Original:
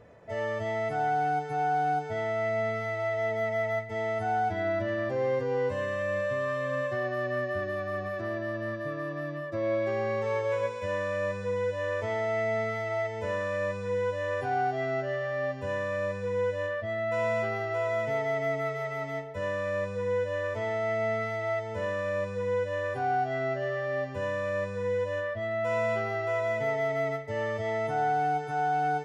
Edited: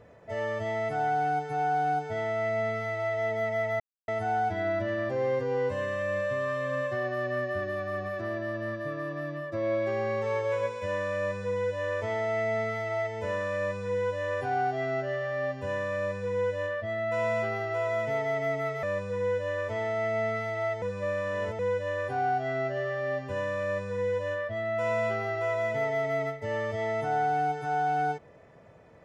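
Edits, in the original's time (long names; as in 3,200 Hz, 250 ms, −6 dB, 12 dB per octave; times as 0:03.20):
0:03.80–0:04.08: silence
0:18.83–0:19.69: remove
0:21.68–0:22.45: reverse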